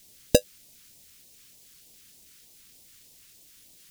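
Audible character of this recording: aliases and images of a low sample rate 1.1 kHz, jitter 0%; random-step tremolo; a quantiser's noise floor 10-bit, dither triangular; phasing stages 2, 3.3 Hz, lowest notch 690–1400 Hz

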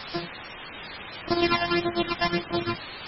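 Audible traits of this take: a buzz of ramps at a fixed pitch in blocks of 128 samples; phasing stages 12, 1.7 Hz, lowest notch 390–2700 Hz; a quantiser's noise floor 6-bit, dither triangular; MP3

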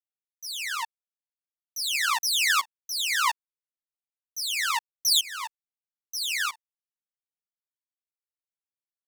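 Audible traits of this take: tremolo saw up 0.77 Hz, depth 95%; a quantiser's noise floor 12-bit, dither none; a shimmering, thickened sound

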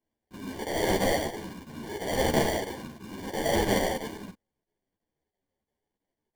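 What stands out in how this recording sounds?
chopped level 3 Hz, depth 65%, duty 90%; aliases and images of a low sample rate 1.3 kHz, jitter 0%; a shimmering, thickened sound

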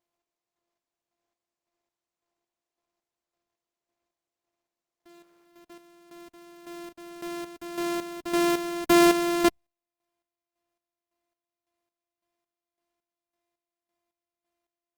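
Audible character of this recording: a buzz of ramps at a fixed pitch in blocks of 128 samples; chopped level 1.8 Hz, depth 65%, duty 40%; Opus

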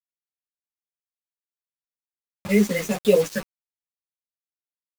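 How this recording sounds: phasing stages 6, 1.4 Hz, lowest notch 800–1800 Hz; a quantiser's noise floor 6-bit, dither none; a shimmering, thickened sound

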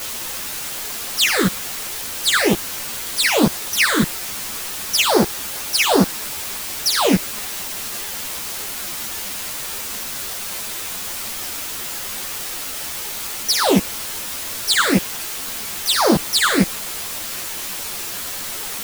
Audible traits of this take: phasing stages 8, 1.2 Hz, lowest notch 740–2700 Hz; a quantiser's noise floor 6-bit, dither triangular; a shimmering, thickened sound

